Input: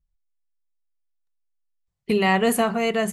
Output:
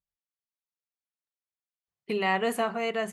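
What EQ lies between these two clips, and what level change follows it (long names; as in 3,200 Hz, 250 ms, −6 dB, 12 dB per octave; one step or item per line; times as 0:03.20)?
high-pass filter 440 Hz 6 dB per octave
high-shelf EQ 5,500 Hz −11 dB
−4.0 dB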